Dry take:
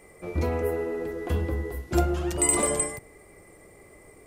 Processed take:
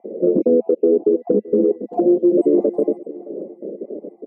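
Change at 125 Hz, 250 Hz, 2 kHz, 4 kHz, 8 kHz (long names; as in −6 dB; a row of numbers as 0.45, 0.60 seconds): −7.5 dB, +14.0 dB, below −25 dB, below −30 dB, below −40 dB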